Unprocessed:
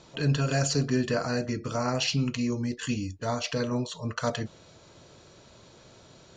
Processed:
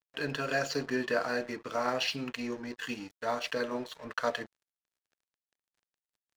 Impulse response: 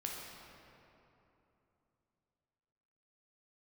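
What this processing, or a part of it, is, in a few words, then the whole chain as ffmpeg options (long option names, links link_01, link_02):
pocket radio on a weak battery: -af "highpass=350,lowpass=3900,aeval=exprs='sgn(val(0))*max(abs(val(0))-0.00422,0)':channel_layout=same,equalizer=frequency=1700:width_type=o:width=0.36:gain=4.5"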